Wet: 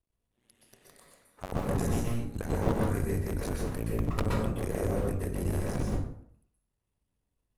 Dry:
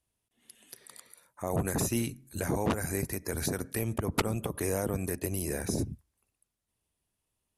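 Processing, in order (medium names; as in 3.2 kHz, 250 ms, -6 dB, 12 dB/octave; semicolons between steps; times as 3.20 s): cycle switcher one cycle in 2, muted; tilt EQ -2 dB/octave; plate-style reverb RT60 0.61 s, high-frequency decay 0.65×, pre-delay 110 ms, DRR -2.5 dB; trim -3.5 dB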